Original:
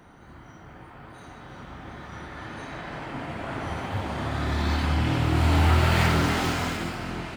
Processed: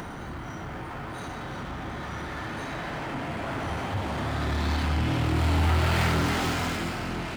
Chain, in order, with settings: upward compressor, threshold -31 dBFS; power-law curve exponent 0.7; gain -5.5 dB

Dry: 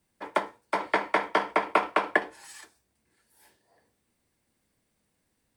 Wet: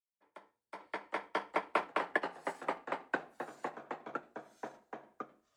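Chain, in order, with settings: opening faded in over 1.49 s; echoes that change speed 0.718 s, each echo -2 st, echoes 3; upward expander 1.5:1, over -35 dBFS; gain -8 dB

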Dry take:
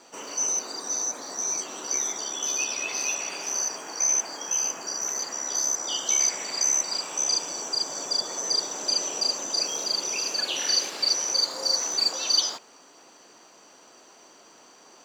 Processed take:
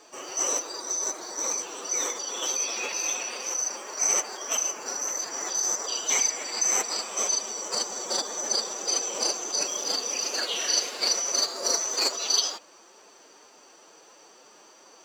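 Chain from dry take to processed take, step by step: formant-preserving pitch shift +4.5 st

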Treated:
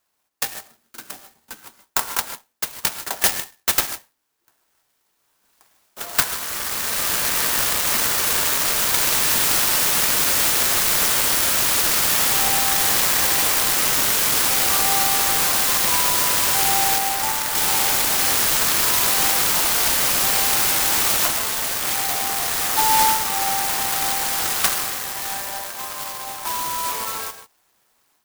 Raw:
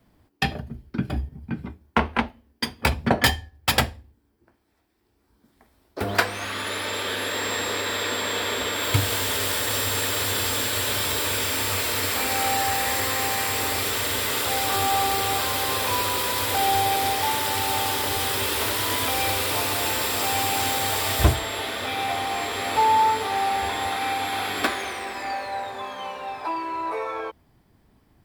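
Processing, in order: HPF 1400 Hz 12 dB/oct; AGC gain up to 9 dB; 16.98–17.55 LPF 3000 Hz 12 dB/oct; reverb, pre-delay 3 ms, DRR 9.5 dB; clock jitter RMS 0.13 ms

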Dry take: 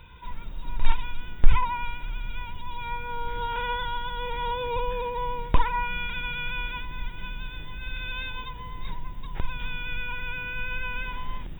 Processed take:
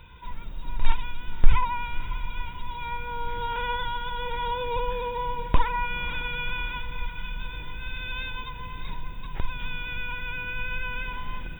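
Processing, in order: 6.8–7.36 bell 380 Hz -11.5 dB 1.1 oct; diffused feedback echo 0.546 s, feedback 61%, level -13.5 dB

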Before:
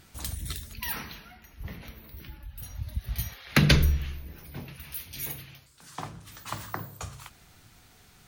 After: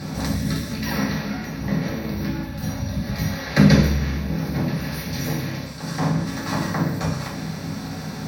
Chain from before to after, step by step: per-bin compression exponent 0.6; dynamic EQ 1900 Hz, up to +6 dB, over -50 dBFS, Q 5.5; in parallel at +2.5 dB: compressor, threshold -33 dBFS, peak gain reduction 19 dB; on the sum: reverb RT60 0.50 s, pre-delay 3 ms, DRR -7 dB; gain -13 dB

